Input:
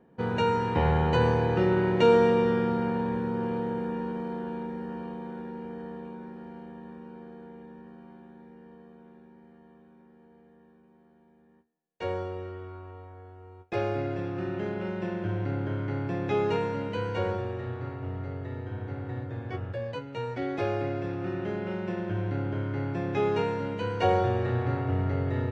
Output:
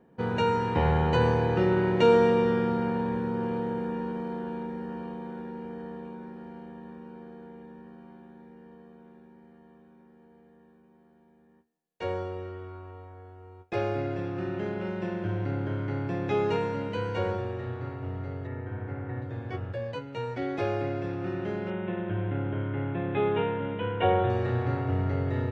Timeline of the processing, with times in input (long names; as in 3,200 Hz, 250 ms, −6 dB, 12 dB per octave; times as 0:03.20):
0:18.47–0:19.22: high shelf with overshoot 2,900 Hz −9.5 dB, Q 1.5
0:21.70–0:24.30: bad sample-rate conversion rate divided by 6×, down none, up filtered